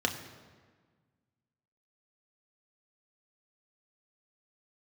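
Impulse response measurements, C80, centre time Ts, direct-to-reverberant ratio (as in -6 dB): 10.5 dB, 23 ms, 2.5 dB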